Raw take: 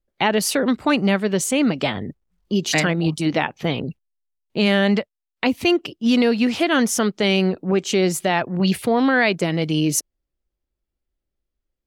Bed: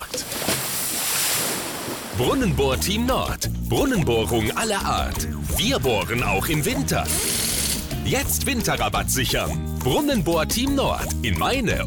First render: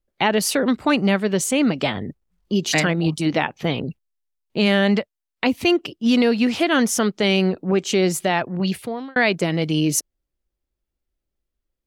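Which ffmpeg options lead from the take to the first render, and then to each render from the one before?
ffmpeg -i in.wav -filter_complex "[0:a]asplit=2[link_01][link_02];[link_01]atrim=end=9.16,asetpts=PTS-STARTPTS,afade=type=out:start_time=8.1:duration=1.06:curve=qsin[link_03];[link_02]atrim=start=9.16,asetpts=PTS-STARTPTS,afade=type=in:duration=0.004:curve=hsin[link_04];[link_03][link_04]concat=n=2:v=0:a=1" out.wav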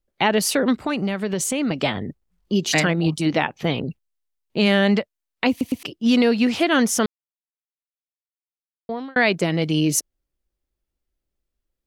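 ffmpeg -i in.wav -filter_complex "[0:a]asettb=1/sr,asplit=3[link_01][link_02][link_03];[link_01]atrim=end=0.854[link_04];[link_02]atrim=start=0.85:end=1.71,asetpts=PTS-STARTPTS,afade=type=in:duration=0.004:curve=qsin,afade=type=out:start_time=0.856:duration=0.004:curve=qsin,acompressor=threshold=-19dB:ratio=6:attack=3.2:release=140:knee=1:detection=peak[link_05];[link_03]atrim=start=1.706[link_06];[link_04][link_05]acrossfade=duration=0.004:curve1=hsin:curve2=qsin[link_07];[link_07][link_06]acrossfade=duration=0.004:curve1=qsin:curve2=hsin,asplit=6[link_08][link_09][link_10][link_11][link_12][link_13];[link_08]atrim=end=5.612[link_14];[link_09]atrim=start=5.498:end=5.612[link_15];[link_10]atrim=start=5.498:end=5.612[link_16];[link_11]atrim=start=5.828:end=7.06,asetpts=PTS-STARTPTS,afade=type=out:start_time=1.228:duration=0.004:curve=hsin[link_17];[link_12]atrim=start=7.06:end=8.89,asetpts=PTS-STARTPTS,volume=0[link_18];[link_13]atrim=start=8.89,asetpts=PTS-STARTPTS,afade=type=in:duration=0.004:curve=hsin[link_19];[link_14][link_15]acrossfade=duration=0.004:curve1=hsin:curve2=hsin[link_20];[link_20][link_16]acrossfade=duration=0.004:curve1=hsin:curve2=hsin[link_21];[link_17][link_18][link_19]concat=n=3:v=0:a=1[link_22];[link_21][link_22]acrossfade=duration=0.004:curve1=hsin:curve2=hsin" out.wav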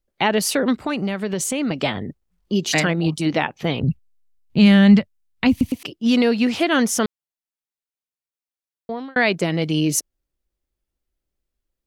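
ffmpeg -i in.wav -filter_complex "[0:a]asplit=3[link_01][link_02][link_03];[link_01]afade=type=out:start_time=3.81:duration=0.02[link_04];[link_02]asubboost=boost=9.5:cutoff=150,afade=type=in:start_time=3.81:duration=0.02,afade=type=out:start_time=5.7:duration=0.02[link_05];[link_03]afade=type=in:start_time=5.7:duration=0.02[link_06];[link_04][link_05][link_06]amix=inputs=3:normalize=0" out.wav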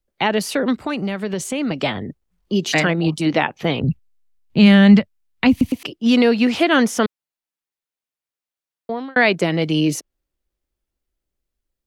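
ffmpeg -i in.wav -filter_complex "[0:a]acrossover=split=220|3800[link_01][link_02][link_03];[link_02]dynaudnorm=framelen=930:gausssize=5:maxgain=4.5dB[link_04];[link_03]alimiter=limit=-21dB:level=0:latency=1:release=137[link_05];[link_01][link_04][link_05]amix=inputs=3:normalize=0" out.wav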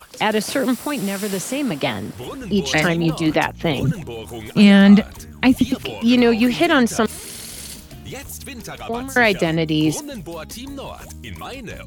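ffmpeg -i in.wav -i bed.wav -filter_complex "[1:a]volume=-11dB[link_01];[0:a][link_01]amix=inputs=2:normalize=0" out.wav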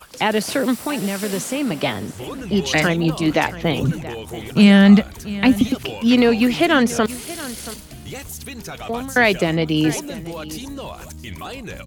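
ffmpeg -i in.wav -af "aecho=1:1:679:0.15" out.wav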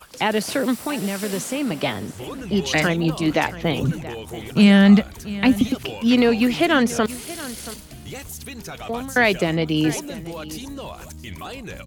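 ffmpeg -i in.wav -af "volume=-2dB" out.wav

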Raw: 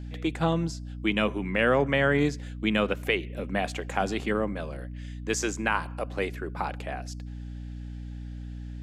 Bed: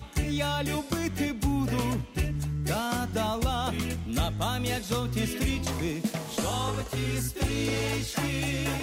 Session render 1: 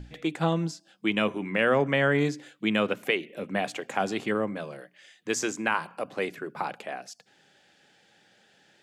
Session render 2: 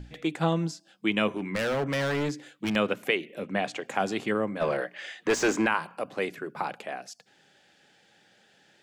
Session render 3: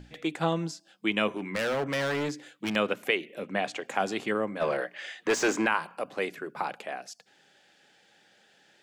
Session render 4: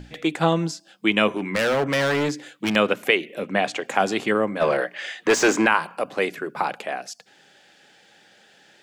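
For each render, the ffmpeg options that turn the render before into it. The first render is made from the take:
ffmpeg -i in.wav -af "bandreject=frequency=60:width_type=h:width=6,bandreject=frequency=120:width_type=h:width=6,bandreject=frequency=180:width_type=h:width=6,bandreject=frequency=240:width_type=h:width=6,bandreject=frequency=300:width_type=h:width=6" out.wav
ffmpeg -i in.wav -filter_complex "[0:a]asettb=1/sr,asplit=3[link_01][link_02][link_03];[link_01]atrim=end=1.314[link_04];[link_02]atrim=start=1.31:end=2.76,asetpts=PTS-STARTPTS,afade=type=in:duration=0.004:curve=qsin,afade=type=out:start_time=1.446:duration=0.004:curve=qsin,asoftclip=type=hard:threshold=-24.5dB[link_05];[link_03]atrim=start=2.756[link_06];[link_04][link_05]acrossfade=duration=0.004:curve1=hsin:curve2=qsin[link_07];[link_07][link_06]acrossfade=duration=0.004:curve1=qsin:curve2=hsin,asettb=1/sr,asplit=3[link_08][link_09][link_10];[link_08]atrim=end=3.444[link_11];[link_09]atrim=start=3.44:end=3.85,asetpts=PTS-STARTPTS,afade=type=in:duration=0.004:curve=qsin,afade=type=out:start_time=0.406:duration=0.004:curve=qsin,lowpass=7600[link_12];[link_10]atrim=start=3.846[link_13];[link_11][link_12]acrossfade=duration=0.004:curve1=hsin:curve2=qsin[link_14];[link_14][link_13]acrossfade=duration=0.004:curve1=qsin:curve2=hsin,asplit=3[link_15][link_16][link_17];[link_15]afade=type=out:start_time=4.6:duration=0.02[link_18];[link_16]asplit=2[link_19][link_20];[link_20]highpass=frequency=720:poles=1,volume=26dB,asoftclip=type=tanh:threshold=-12.5dB[link_21];[link_19][link_21]amix=inputs=2:normalize=0,lowpass=frequency=1300:poles=1,volume=-6dB,afade=type=in:start_time=4.6:duration=0.02,afade=type=out:start_time=5.65:duration=0.02[link_22];[link_17]afade=type=in:start_time=5.65:duration=0.02[link_23];[link_18][link_22][link_23]amix=inputs=3:normalize=0" out.wav
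ffmpeg -i in.wav -af "lowshelf=frequency=170:gain=-8.5" out.wav
ffmpeg -i in.wav -af "volume=7.5dB" out.wav

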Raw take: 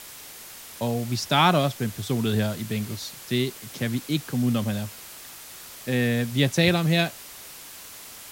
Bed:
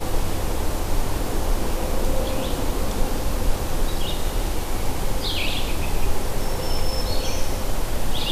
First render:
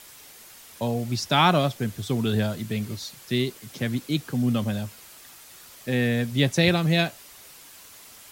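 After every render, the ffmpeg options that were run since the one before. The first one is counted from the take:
ffmpeg -i in.wav -af "afftdn=noise_reduction=6:noise_floor=-43" out.wav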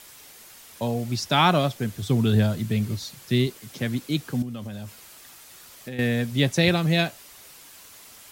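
ffmpeg -i in.wav -filter_complex "[0:a]asettb=1/sr,asplit=3[link_01][link_02][link_03];[link_01]atrim=end=2.024[link_04];[link_02]atrim=start=2.02:end=3.47,asetpts=PTS-STARTPTS,afade=type=in:duration=0.004:curve=qsin,afade=type=out:start_time=1.446:duration=0.004:curve=qsin,equalizer=frequency=110:width=0.61:gain=6[link_05];[link_03]atrim=start=3.466[link_06];[link_04][link_05]acrossfade=duration=0.004:curve1=hsin:curve2=qsin[link_07];[link_07][link_06]acrossfade=duration=0.004:curve1=qsin:curve2=hsin,asettb=1/sr,asplit=3[link_08][link_09][link_10];[link_08]atrim=end=4.424[link_11];[link_09]atrim=start=4.42:end=5.99,asetpts=PTS-STARTPTS,afade=type=in:duration=0.004:curve=qsin,afade=type=out:start_time=1.566:duration=0.004:curve=qsin,acompressor=threshold=-32dB:ratio=5:attack=3.2:release=140:knee=1:detection=peak[link_12];[link_10]atrim=start=5.986[link_13];[link_11][link_12]acrossfade=duration=0.004:curve1=hsin:curve2=qsin[link_14];[link_14][link_13]acrossfade=duration=0.004:curve1=qsin:curve2=hsin" out.wav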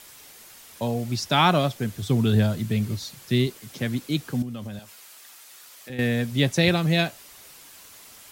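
ffmpeg -i in.wav -filter_complex "[0:a]asettb=1/sr,asplit=3[link_01][link_02][link_03];[link_01]atrim=end=4.794[link_04];[link_02]atrim=start=4.79:end=5.9,asetpts=PTS-STARTPTS,afade=type=in:duration=0.004:curve=qsin,afade=type=out:start_time=1.106:duration=0.004:curve=qsin,highpass=frequency=770:poles=1[link_05];[link_03]atrim=start=5.896[link_06];[link_04][link_05]acrossfade=duration=0.004:curve1=hsin:curve2=qsin[link_07];[link_07][link_06]acrossfade=duration=0.004:curve1=qsin:curve2=hsin" out.wav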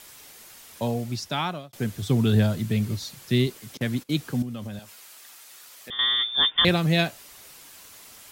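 ffmpeg -i in.wav -filter_complex "[0:a]asettb=1/sr,asplit=3[link_01][link_02][link_03];[link_01]atrim=end=3.774[link_04];[link_02]atrim=start=3.77:end=4.18,asetpts=PTS-STARTPTS,afade=type=in:duration=0.004:curve=qsin,afade=type=out:start_time=0.406:duration=0.004:curve=qsin,agate=range=-19dB:threshold=-39dB:ratio=16:release=100:detection=peak[link_05];[link_03]atrim=start=4.176[link_06];[link_04][link_05]acrossfade=duration=0.004:curve1=hsin:curve2=qsin[link_07];[link_07][link_06]acrossfade=duration=0.004:curve1=qsin:curve2=hsin,asettb=1/sr,asplit=3[link_08][link_09][link_10];[link_08]atrim=end=5.904[link_11];[link_09]atrim=start=5.9:end=6.65,asetpts=PTS-STARTPTS,afade=type=in:duration=0.004:curve=qsin,afade=type=out:start_time=0.746:duration=0.004:curve=qsin,lowpass=frequency=3100:width_type=q:width=0.5098,lowpass=frequency=3100:width_type=q:width=0.6013,lowpass=frequency=3100:width_type=q:width=0.9,lowpass=frequency=3100:width_type=q:width=2.563,afreqshift=-3700[link_12];[link_10]atrim=start=6.646[link_13];[link_11][link_12]acrossfade=duration=0.004:curve1=hsin:curve2=qsin[link_14];[link_14][link_13]acrossfade=duration=0.004:curve1=qsin:curve2=hsin,asplit=2[link_15][link_16];[link_15]atrim=end=1.73,asetpts=PTS-STARTPTS,afade=type=out:start_time=0.88:duration=0.85[link_17];[link_16]atrim=start=1.73,asetpts=PTS-STARTPTS,afade=type=in:duration=0.004:curve=hsin[link_18];[link_17][link_18]concat=n=2:v=0:a=1" out.wav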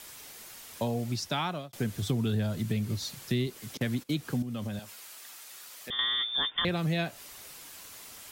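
ffmpeg -i in.wav -filter_complex "[0:a]acrossover=split=600|2600[link_01][link_02][link_03];[link_03]alimiter=limit=-21.5dB:level=0:latency=1:release=224[link_04];[link_01][link_02][link_04]amix=inputs=3:normalize=0,acompressor=threshold=-27dB:ratio=4" out.wav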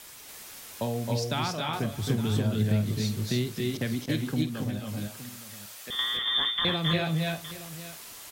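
ffmpeg -i in.wav -filter_complex "[0:a]asplit=2[link_01][link_02];[link_02]adelay=49,volume=-13.5dB[link_03];[link_01][link_03]amix=inputs=2:normalize=0,aecho=1:1:267|286|587|866:0.501|0.708|0.112|0.188" out.wav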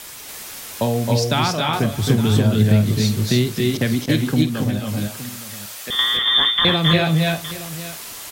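ffmpeg -i in.wav -af "volume=10.5dB" out.wav

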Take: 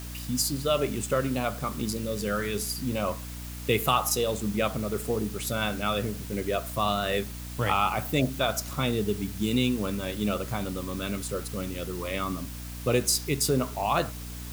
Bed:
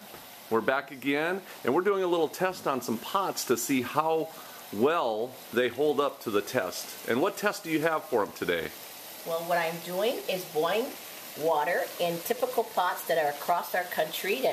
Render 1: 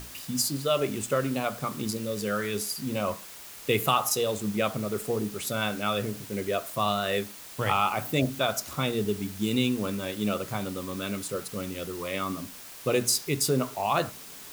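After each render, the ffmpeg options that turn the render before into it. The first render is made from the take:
ffmpeg -i in.wav -af "bandreject=frequency=60:width_type=h:width=6,bandreject=frequency=120:width_type=h:width=6,bandreject=frequency=180:width_type=h:width=6,bandreject=frequency=240:width_type=h:width=6,bandreject=frequency=300:width_type=h:width=6" out.wav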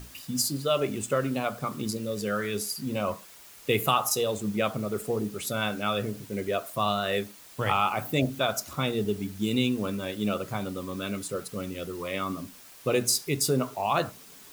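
ffmpeg -i in.wav -af "afftdn=noise_reduction=6:noise_floor=-45" out.wav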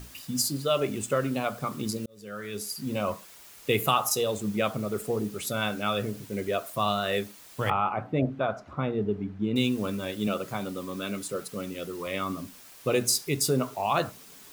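ffmpeg -i in.wav -filter_complex "[0:a]asettb=1/sr,asplit=3[link_01][link_02][link_03];[link_01]atrim=end=7.704[link_04];[link_02]atrim=start=7.7:end=9.56,asetpts=PTS-STARTPTS,afade=type=in:duration=0.004:curve=qsin,afade=type=out:start_time=1.856:duration=0.004:curve=qsin,lowpass=1500[link_05];[link_03]atrim=start=9.556[link_06];[link_04][link_05]acrossfade=duration=0.004:curve1=hsin:curve2=qsin[link_07];[link_07][link_06]acrossfade=duration=0.004:curve1=qsin:curve2=hsin,asettb=1/sr,asplit=3[link_08][link_09][link_10];[link_08]atrim=end=10.274[link_11];[link_09]atrim=start=10.27:end=12.07,asetpts=PTS-STARTPTS,afade=type=in:duration=0.004:curve=qsin,afade=type=out:start_time=1.796:duration=0.004:curve=qsin,highpass=130[link_12];[link_10]atrim=start=12.066[link_13];[link_11][link_12]acrossfade=duration=0.004:curve1=hsin:curve2=qsin[link_14];[link_14][link_13]acrossfade=duration=0.004:curve1=qsin:curve2=hsin,asplit=2[link_15][link_16];[link_15]atrim=end=2.06,asetpts=PTS-STARTPTS,afade=type=out:start_time=2.056:duration=0.004:curve=hsin[link_17];[link_16]atrim=start=2.06,asetpts=PTS-STARTPTS,afade=type=in:duration=0.84[link_18];[link_17][link_18]concat=n=2:v=0:a=1" out.wav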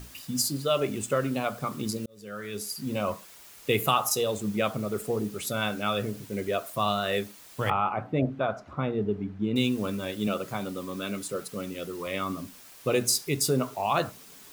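ffmpeg -i in.wav -af anull out.wav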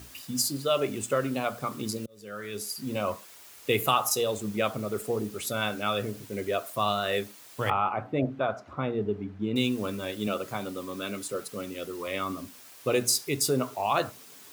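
ffmpeg -i in.wav -af "highpass=73,equalizer=frequency=170:width=2.9:gain=-7.5" out.wav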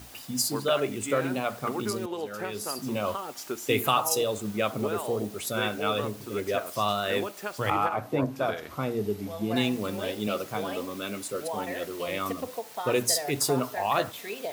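ffmpeg -i in.wav -i bed.wav -filter_complex "[1:a]volume=-8dB[link_01];[0:a][link_01]amix=inputs=2:normalize=0" out.wav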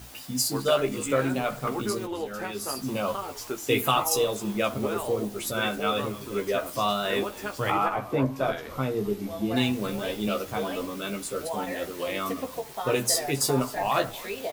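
ffmpeg -i in.wav -filter_complex "[0:a]asplit=2[link_01][link_02];[link_02]adelay=15,volume=-5dB[link_03];[link_01][link_03]amix=inputs=2:normalize=0,asplit=5[link_04][link_05][link_06][link_07][link_08];[link_05]adelay=265,afreqshift=-120,volume=-19dB[link_09];[link_06]adelay=530,afreqshift=-240,volume=-25.9dB[link_10];[link_07]adelay=795,afreqshift=-360,volume=-32.9dB[link_11];[link_08]adelay=1060,afreqshift=-480,volume=-39.8dB[link_12];[link_04][link_09][link_10][link_11][link_12]amix=inputs=5:normalize=0" out.wav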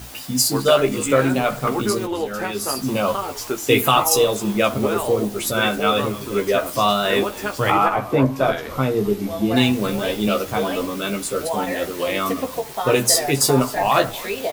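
ffmpeg -i in.wav -af "volume=8dB,alimiter=limit=-3dB:level=0:latency=1" out.wav

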